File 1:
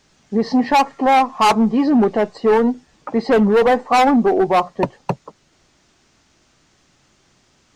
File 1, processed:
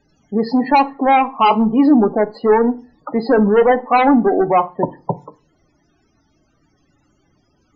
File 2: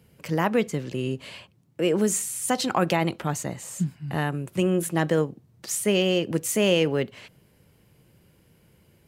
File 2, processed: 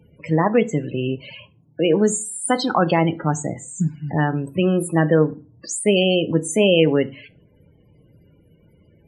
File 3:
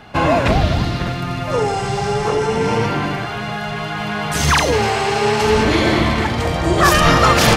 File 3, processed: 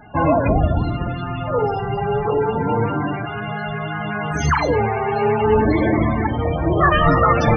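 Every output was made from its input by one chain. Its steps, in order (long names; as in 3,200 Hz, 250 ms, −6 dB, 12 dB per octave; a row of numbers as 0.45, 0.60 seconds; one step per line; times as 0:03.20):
spectral peaks only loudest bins 32
feedback delay network reverb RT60 0.34 s, low-frequency decay 1.25×, high-frequency decay 0.75×, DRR 11.5 dB
normalise the peak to −3 dBFS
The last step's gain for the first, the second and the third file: +1.0, +5.5, −1.5 decibels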